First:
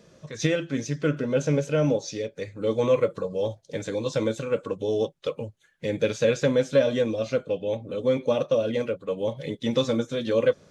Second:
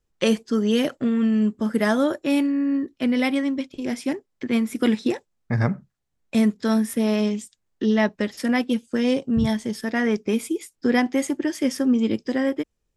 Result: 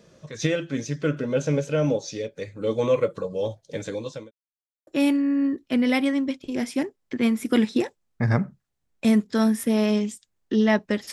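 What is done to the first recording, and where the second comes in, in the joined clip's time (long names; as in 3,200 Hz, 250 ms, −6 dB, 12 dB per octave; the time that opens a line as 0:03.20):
first
0:03.86–0:04.31: fade out linear
0:04.31–0:04.87: silence
0:04.87: continue with second from 0:02.17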